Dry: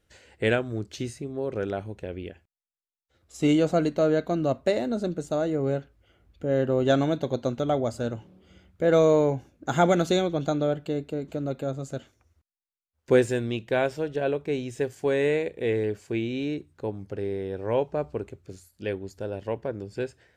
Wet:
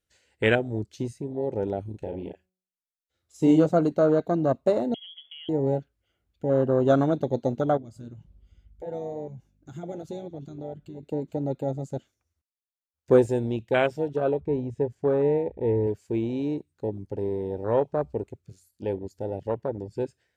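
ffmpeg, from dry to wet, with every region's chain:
ffmpeg -i in.wav -filter_complex "[0:a]asettb=1/sr,asplit=3[link_01][link_02][link_03];[link_01]atrim=end=1.904[link_04];[link_02]atrim=start=1.9:end=3.66,asetpts=PTS-STARTPTS,afade=type=in:duration=0.004:curve=qsin,afade=type=out:start_time=1.756:duration=0.004:curve=qsin,asplit=2[link_05][link_06];[link_06]adelay=38,volume=-5dB[link_07];[link_05][link_07]amix=inputs=2:normalize=0,atrim=end_sample=77616,bandreject=frequency=185.5:width_type=h:width=4,bandreject=frequency=371:width_type=h:width=4,bandreject=frequency=556.5:width_type=h:width=4,bandreject=frequency=742:width_type=h:width=4,bandreject=frequency=927.5:width_type=h:width=4,bandreject=frequency=1113:width_type=h:width=4,bandreject=frequency=1298.5:width_type=h:width=4,bandreject=frequency=1484:width_type=h:width=4,bandreject=frequency=1669.5:width_type=h:width=4,bandreject=frequency=1855:width_type=h:width=4[link_08];[link_03]atrim=start=3.656[link_09];[link_04][link_08]acrossfade=duration=0.004:curve1=hsin:curve2=qsin[link_10];[link_10][link_09]acrossfade=duration=0.004:curve1=qsin:curve2=hsin,asettb=1/sr,asplit=3[link_11][link_12][link_13];[link_11]atrim=end=4.944[link_14];[link_12]atrim=start=4.94:end=5.49,asetpts=PTS-STARTPTS,afade=type=in:duration=0.004:curve=qsin,afade=type=out:start_time=0.546:duration=0.004:curve=qsin,acompressor=threshold=-31dB:ratio=4:attack=3.2:release=140:knee=1:detection=peak,lowpass=frequency=3000:width_type=q:width=0.5098,lowpass=frequency=3000:width_type=q:width=0.6013,lowpass=frequency=3000:width_type=q:width=0.9,lowpass=frequency=3000:width_type=q:width=2.563,afreqshift=-3500[link_15];[link_13]atrim=start=5.486[link_16];[link_14][link_15]acrossfade=duration=0.004:curve1=hsin:curve2=qsin[link_17];[link_17][link_16]acrossfade=duration=0.004:curve1=qsin:curve2=hsin,asettb=1/sr,asplit=3[link_18][link_19][link_20];[link_18]atrim=end=7.774[link_21];[link_19]atrim=start=7.77:end=11.03,asetpts=PTS-STARTPTS,afade=type=in:duration=0.004:curve=qsin,afade=type=out:start_time=3.256:duration=0.004:curve=qsin,aeval=exprs='val(0)+0.00501*(sin(2*PI*50*n/s)+sin(2*PI*2*50*n/s)/2+sin(2*PI*3*50*n/s)/3+sin(2*PI*4*50*n/s)/4+sin(2*PI*5*50*n/s)/5)':channel_layout=same,acompressor=threshold=-36dB:ratio=2:attack=3.2:release=140:knee=1:detection=peak,flanger=delay=6:depth=2.8:regen=-67:speed=2:shape=triangular[link_22];[link_20]atrim=start=11.026[link_23];[link_21][link_22]acrossfade=duration=0.004:curve1=hsin:curve2=qsin[link_24];[link_24][link_23]acrossfade=duration=0.004:curve1=qsin:curve2=hsin,asettb=1/sr,asplit=3[link_25][link_26][link_27];[link_25]atrim=end=14.404[link_28];[link_26]atrim=start=14.4:end=15.87,asetpts=PTS-STARTPTS,afade=type=in:duration=0.004:curve=qsin,afade=type=out:start_time=1.466:duration=0.004:curve=qsin,lowpass=frequency=1200:poles=1,equalizer=frequency=68:width_type=o:width=0.83:gain=14[link_29];[link_27]atrim=start=15.866[link_30];[link_28][link_29]acrossfade=duration=0.004:curve1=hsin:curve2=qsin[link_31];[link_31][link_30]acrossfade=duration=0.004:curve1=qsin:curve2=hsin,afwtdn=0.0355,highshelf=frequency=2800:gain=9,volume=1.5dB" out.wav

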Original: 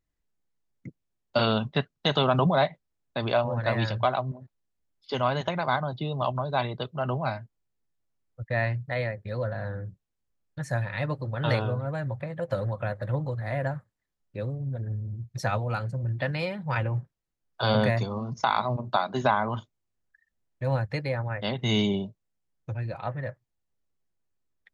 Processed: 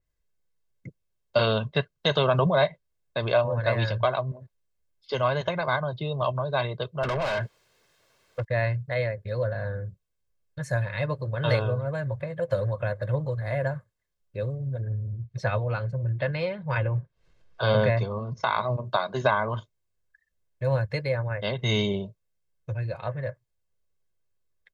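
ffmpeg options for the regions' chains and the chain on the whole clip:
ffmpeg -i in.wav -filter_complex "[0:a]asettb=1/sr,asplit=3[link_01][link_02][link_03];[link_01]atrim=end=7.034[link_04];[link_02]atrim=start=7.03:end=8.45,asetpts=PTS-STARTPTS,afade=type=in:duration=0.004:curve=qsin,afade=type=out:start_time=1.416:duration=0.004:curve=qsin,acompressor=threshold=-39dB:ratio=6:attack=3.2:release=140:knee=1:detection=peak,asplit=2[link_05][link_06];[link_06]highpass=frequency=720:poles=1,volume=36dB,asoftclip=type=tanh:threshold=-20dB[link_07];[link_05][link_07]amix=inputs=2:normalize=0,lowpass=frequency=2900:poles=1,volume=-6dB,equalizer=frequency=4300:width=1:gain=2.5[link_08];[link_03]atrim=start=8.446[link_09];[link_04][link_08]acrossfade=duration=0.004:curve1=hsin:curve2=qsin[link_10];[link_10][link_09]acrossfade=duration=0.004:curve1=qsin:curve2=hsin,asettb=1/sr,asplit=3[link_11][link_12][link_13];[link_11]atrim=end=14.804[link_14];[link_12]atrim=start=14.8:end=18.68,asetpts=PTS-STARTPTS,afade=type=in:duration=0.004:curve=qsin,afade=type=out:start_time=3.876:duration=0.004:curve=qsin,lowpass=3900,acompressor=mode=upward:threshold=-44dB:ratio=2.5:attack=3.2:release=140:knee=2.83:detection=peak[link_15];[link_13]atrim=start=18.676[link_16];[link_14][link_15]acrossfade=duration=0.004:curve1=hsin:curve2=qsin[link_17];[link_17][link_16]acrossfade=duration=0.004:curve1=qsin:curve2=hsin,bandreject=frequency=1000:width=18,aecho=1:1:1.9:0.56,adynamicequalizer=threshold=0.00708:dfrequency=4800:dqfactor=0.7:tfrequency=4800:tqfactor=0.7:attack=5:release=100:ratio=0.375:range=2:mode=cutabove:tftype=highshelf" out.wav

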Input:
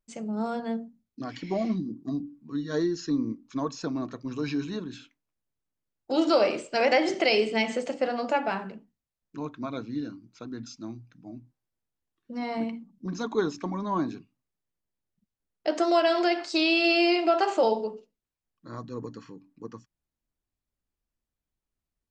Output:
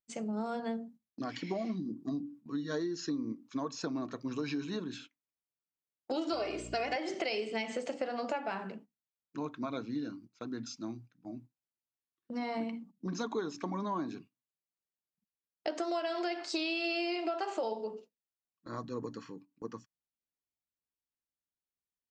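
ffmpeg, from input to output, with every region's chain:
ffmpeg -i in.wav -filter_complex "[0:a]asettb=1/sr,asplit=3[link_01][link_02][link_03];[link_01]atrim=end=6.324[link_04];[link_02]atrim=start=6.32:end=6.96,asetpts=PTS-STARTPTS,afade=type=in:duration=0.004:curve=qsin,afade=type=out:start_time=0.636:duration=0.004:curve=qsin,aecho=1:1:2.8:0.74,atrim=end_sample=28224,aeval=exprs='val(0)+0.0141*(sin(2*PI*60*n/s)+sin(2*PI*2*60*n/s)/2+sin(2*PI*3*60*n/s)/3+sin(2*PI*4*60*n/s)/4+sin(2*PI*5*60*n/s)/5)':channel_layout=same[link_05];[link_03]atrim=start=6.956[link_06];[link_04][link_05]acrossfade=duration=0.004:curve1=hsin:curve2=qsin[link_07];[link_07][link_06]acrossfade=duration=0.004:curve1=qsin:curve2=hsin,highpass=frequency=170:poles=1,agate=range=-12dB:threshold=-51dB:ratio=16:detection=peak,acompressor=threshold=-32dB:ratio=6" out.wav

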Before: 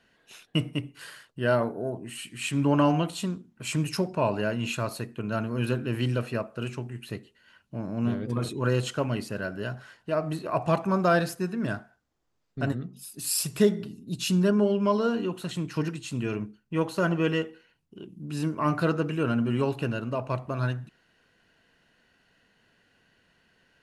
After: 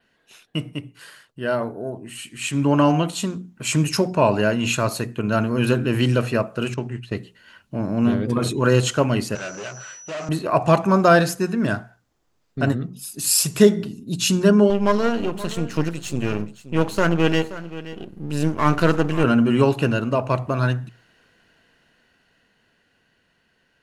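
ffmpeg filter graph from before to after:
ffmpeg -i in.wav -filter_complex "[0:a]asettb=1/sr,asplit=3[link_01][link_02][link_03];[link_01]atrim=end=6.744[link_04];[link_02]atrim=start=6.74:end=7.16,asetpts=PTS-STARTPTS,afade=type=in:duration=0.004:curve=qsin,afade=type=out:start_time=0.416:duration=0.004:curve=qsin,agate=range=-33dB:threshold=-38dB:ratio=3:release=100:detection=peak,lowpass=6500[link_05];[link_03]atrim=start=7.156[link_06];[link_04][link_05]acrossfade=duration=0.004:curve1=hsin:curve2=qsin[link_07];[link_07][link_06]acrossfade=duration=0.004:curve1=qsin:curve2=hsin,asettb=1/sr,asplit=3[link_08][link_09][link_10];[link_08]atrim=end=9.354[link_11];[link_09]atrim=start=9.35:end=10.29,asetpts=PTS-STARTPTS,afade=type=in:duration=0.004:curve=qsin,afade=type=out:start_time=0.936:duration=0.004:curve=qsin,aeval=exprs='val(0)+0.00447*sin(2*PI*5900*n/s)':channel_layout=same,aeval=exprs='(tanh(89.1*val(0)+0.5)-tanh(0.5))/89.1':channel_layout=same,highpass=frequency=130:width=0.5412,highpass=frequency=130:width=1.3066,equalizer=frequency=240:width_type=q:width=4:gain=-9,equalizer=frequency=570:width_type=q:width=4:gain=4,equalizer=frequency=1300:width_type=q:width=4:gain=6,equalizer=frequency=2600:width_type=q:width=4:gain=7,lowpass=frequency=8100:width=0.5412,lowpass=frequency=8100:width=1.3066[link_12];[link_10]atrim=start=10.286[link_13];[link_11][link_12]acrossfade=duration=0.004:curve1=hsin:curve2=qsin[link_14];[link_14][link_13]acrossfade=duration=0.004:curve1=qsin:curve2=hsin,asettb=1/sr,asplit=3[link_15][link_16][link_17];[link_15]atrim=end=14.704[link_18];[link_16]atrim=start=14.7:end=19.24,asetpts=PTS-STARTPTS,afade=type=in:duration=0.004:curve=qsin,afade=type=out:start_time=4.536:duration=0.004:curve=qsin,aeval=exprs='if(lt(val(0),0),0.251*val(0),val(0))':channel_layout=same,aecho=1:1:527:0.168,atrim=end_sample=200214[link_19];[link_17]atrim=start=19.236[link_20];[link_18][link_19]acrossfade=duration=0.004:curve1=hsin:curve2=qsin[link_21];[link_21][link_20]acrossfade=duration=0.004:curve1=qsin:curve2=hsin,dynaudnorm=framelen=530:gausssize=11:maxgain=11.5dB,bandreject=frequency=60:width_type=h:width=6,bandreject=frequency=120:width_type=h:width=6,bandreject=frequency=180:width_type=h:width=6,adynamicequalizer=threshold=0.00447:dfrequency=6700:dqfactor=3.1:tfrequency=6700:tqfactor=3.1:attack=5:release=100:ratio=0.375:range=2.5:mode=boostabove:tftype=bell" out.wav

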